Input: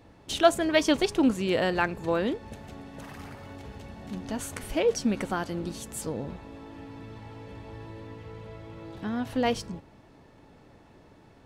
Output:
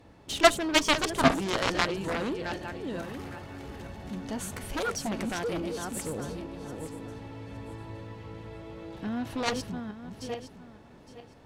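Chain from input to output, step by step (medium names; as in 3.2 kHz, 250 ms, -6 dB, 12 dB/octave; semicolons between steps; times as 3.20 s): backward echo that repeats 431 ms, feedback 43%, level -6.5 dB; Chebyshev shaper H 7 -11 dB, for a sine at -6.5 dBFS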